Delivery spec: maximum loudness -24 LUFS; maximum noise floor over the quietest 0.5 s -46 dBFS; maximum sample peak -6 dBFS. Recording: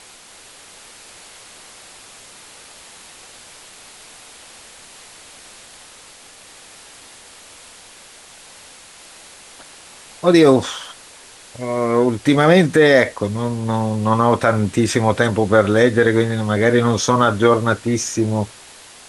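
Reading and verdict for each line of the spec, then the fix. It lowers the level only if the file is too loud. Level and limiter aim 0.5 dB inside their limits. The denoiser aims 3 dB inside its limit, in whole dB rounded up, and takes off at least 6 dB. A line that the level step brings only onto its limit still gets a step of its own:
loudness -16.5 LUFS: fail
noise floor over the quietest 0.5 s -43 dBFS: fail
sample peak -2.0 dBFS: fail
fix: trim -8 dB

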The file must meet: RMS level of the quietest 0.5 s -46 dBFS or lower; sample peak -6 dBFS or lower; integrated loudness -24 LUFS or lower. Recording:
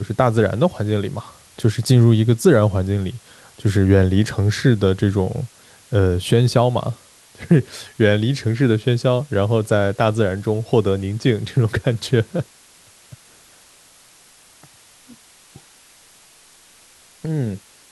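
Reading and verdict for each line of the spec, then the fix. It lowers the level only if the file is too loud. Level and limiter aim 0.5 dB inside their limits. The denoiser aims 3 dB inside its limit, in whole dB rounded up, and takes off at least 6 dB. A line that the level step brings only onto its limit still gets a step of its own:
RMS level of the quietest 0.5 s -50 dBFS: pass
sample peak -2.5 dBFS: fail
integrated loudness -18.5 LUFS: fail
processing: trim -6 dB

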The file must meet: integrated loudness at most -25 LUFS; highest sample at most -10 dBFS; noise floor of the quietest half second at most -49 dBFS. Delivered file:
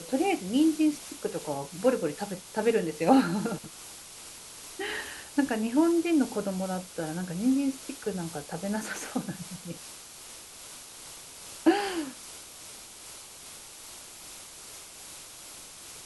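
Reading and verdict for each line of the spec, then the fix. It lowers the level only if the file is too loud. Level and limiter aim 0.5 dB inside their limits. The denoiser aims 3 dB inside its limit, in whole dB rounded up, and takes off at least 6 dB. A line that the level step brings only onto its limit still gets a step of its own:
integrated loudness -29.0 LUFS: pass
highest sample -8.0 dBFS: fail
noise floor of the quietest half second -47 dBFS: fail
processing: noise reduction 6 dB, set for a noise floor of -47 dBFS; peak limiter -10.5 dBFS

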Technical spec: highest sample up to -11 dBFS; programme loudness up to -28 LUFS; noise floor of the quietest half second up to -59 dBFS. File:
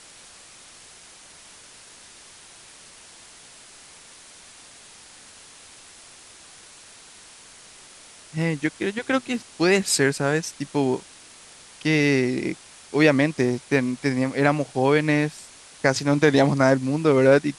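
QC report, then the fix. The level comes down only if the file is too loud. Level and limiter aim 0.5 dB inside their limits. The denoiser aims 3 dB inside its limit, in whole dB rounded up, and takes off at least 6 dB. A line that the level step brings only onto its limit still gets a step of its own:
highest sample -4.5 dBFS: fail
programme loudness -22.0 LUFS: fail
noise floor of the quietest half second -47 dBFS: fail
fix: noise reduction 9 dB, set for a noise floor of -47 dBFS; trim -6.5 dB; peak limiter -11.5 dBFS

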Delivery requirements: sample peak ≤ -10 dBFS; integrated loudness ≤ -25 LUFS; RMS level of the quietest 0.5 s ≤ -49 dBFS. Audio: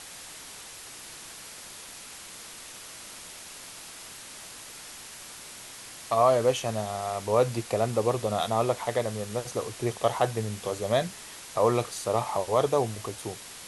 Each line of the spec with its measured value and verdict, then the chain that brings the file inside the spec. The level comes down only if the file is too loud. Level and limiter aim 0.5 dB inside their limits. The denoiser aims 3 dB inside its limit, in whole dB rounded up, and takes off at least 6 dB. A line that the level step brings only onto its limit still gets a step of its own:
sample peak -9.5 dBFS: fail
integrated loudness -27.5 LUFS: pass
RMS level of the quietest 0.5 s -44 dBFS: fail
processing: noise reduction 8 dB, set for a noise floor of -44 dBFS; peak limiter -10.5 dBFS

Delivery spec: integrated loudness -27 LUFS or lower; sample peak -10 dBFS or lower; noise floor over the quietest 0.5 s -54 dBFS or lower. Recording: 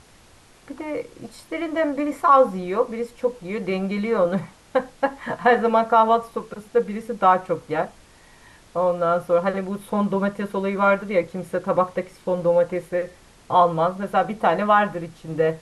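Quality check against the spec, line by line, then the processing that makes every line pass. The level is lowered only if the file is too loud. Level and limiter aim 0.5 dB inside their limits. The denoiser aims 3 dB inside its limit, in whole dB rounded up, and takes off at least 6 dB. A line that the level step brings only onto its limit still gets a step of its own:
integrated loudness -22.0 LUFS: fail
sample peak -5.5 dBFS: fail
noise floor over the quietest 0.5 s -51 dBFS: fail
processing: trim -5.5 dB

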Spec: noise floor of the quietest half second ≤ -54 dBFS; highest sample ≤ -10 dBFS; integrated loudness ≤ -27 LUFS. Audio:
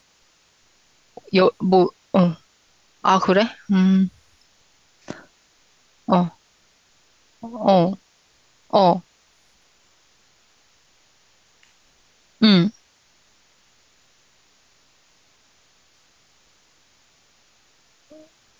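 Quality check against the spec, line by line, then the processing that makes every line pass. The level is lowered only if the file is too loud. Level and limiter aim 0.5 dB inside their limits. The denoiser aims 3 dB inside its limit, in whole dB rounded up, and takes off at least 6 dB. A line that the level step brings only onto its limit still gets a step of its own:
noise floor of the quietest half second -60 dBFS: pass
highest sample -4.5 dBFS: fail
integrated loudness -19.0 LUFS: fail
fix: trim -8.5 dB

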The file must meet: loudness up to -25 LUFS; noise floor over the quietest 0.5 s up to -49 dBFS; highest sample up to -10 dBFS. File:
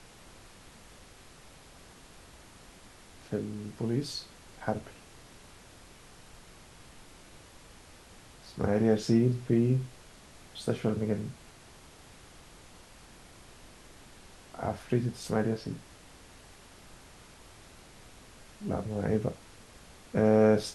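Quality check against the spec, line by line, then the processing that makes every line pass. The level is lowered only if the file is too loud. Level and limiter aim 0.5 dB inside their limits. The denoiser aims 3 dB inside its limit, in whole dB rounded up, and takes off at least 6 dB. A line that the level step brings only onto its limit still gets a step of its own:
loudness -30.5 LUFS: pass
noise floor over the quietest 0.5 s -53 dBFS: pass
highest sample -11.0 dBFS: pass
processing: none needed

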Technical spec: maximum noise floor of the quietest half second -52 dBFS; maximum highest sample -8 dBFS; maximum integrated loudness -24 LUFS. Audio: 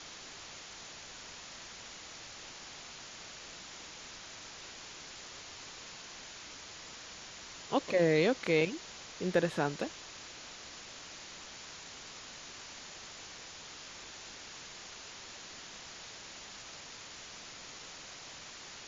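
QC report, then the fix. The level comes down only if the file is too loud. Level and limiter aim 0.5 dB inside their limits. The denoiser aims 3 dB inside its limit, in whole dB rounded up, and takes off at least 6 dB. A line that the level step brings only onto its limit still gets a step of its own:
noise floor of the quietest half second -49 dBFS: fail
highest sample -15.5 dBFS: pass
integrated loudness -39.5 LUFS: pass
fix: noise reduction 6 dB, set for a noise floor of -49 dBFS

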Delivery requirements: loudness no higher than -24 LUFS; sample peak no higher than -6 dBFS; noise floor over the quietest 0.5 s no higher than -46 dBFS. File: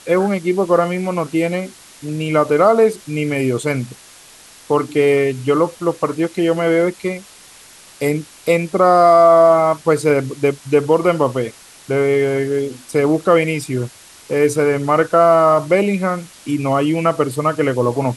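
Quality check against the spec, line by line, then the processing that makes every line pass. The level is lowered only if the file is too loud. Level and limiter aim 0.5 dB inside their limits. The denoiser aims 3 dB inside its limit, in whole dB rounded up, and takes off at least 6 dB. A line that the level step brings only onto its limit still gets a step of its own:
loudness -16.0 LUFS: fail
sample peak -1.5 dBFS: fail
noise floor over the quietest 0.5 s -43 dBFS: fail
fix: trim -8.5 dB

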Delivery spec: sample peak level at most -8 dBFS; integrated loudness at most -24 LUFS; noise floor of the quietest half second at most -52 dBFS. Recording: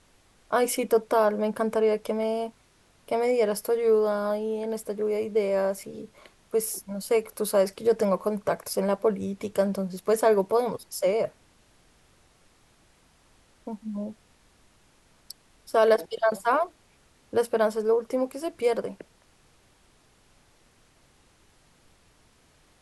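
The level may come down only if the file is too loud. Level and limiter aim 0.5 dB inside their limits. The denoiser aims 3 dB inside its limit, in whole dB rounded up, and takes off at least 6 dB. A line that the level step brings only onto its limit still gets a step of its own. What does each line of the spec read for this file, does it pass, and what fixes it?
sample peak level -9.5 dBFS: pass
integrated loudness -26.0 LUFS: pass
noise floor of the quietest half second -61 dBFS: pass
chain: none needed

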